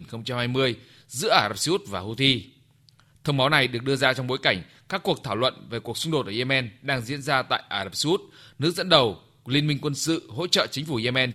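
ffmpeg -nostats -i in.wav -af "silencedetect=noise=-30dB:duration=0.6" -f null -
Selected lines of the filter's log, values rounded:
silence_start: 2.40
silence_end: 3.26 | silence_duration: 0.85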